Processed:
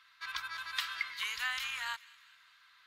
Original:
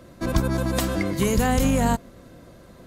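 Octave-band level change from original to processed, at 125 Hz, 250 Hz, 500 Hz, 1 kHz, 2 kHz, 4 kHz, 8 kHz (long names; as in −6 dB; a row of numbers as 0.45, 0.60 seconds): below −40 dB, below −40 dB, below −40 dB, −15.5 dB, −3.0 dB, −2.5 dB, −16.5 dB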